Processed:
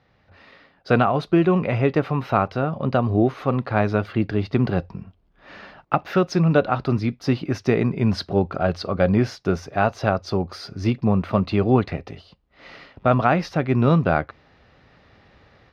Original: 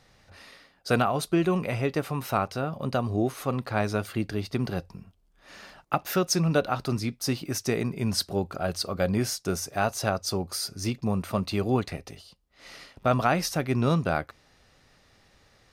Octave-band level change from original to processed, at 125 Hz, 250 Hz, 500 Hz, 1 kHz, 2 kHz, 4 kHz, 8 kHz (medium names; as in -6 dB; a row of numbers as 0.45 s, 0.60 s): +7.0 dB, +7.0 dB, +6.5 dB, +6.0 dB, +4.5 dB, -3.0 dB, -13.0 dB